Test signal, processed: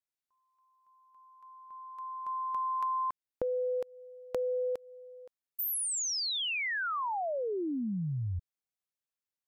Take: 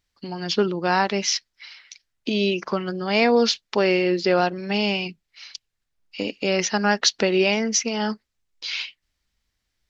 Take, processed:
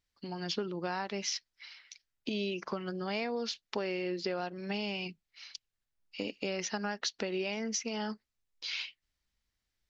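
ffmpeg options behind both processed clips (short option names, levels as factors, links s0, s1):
-af "acompressor=threshold=0.0708:ratio=6,volume=0.398"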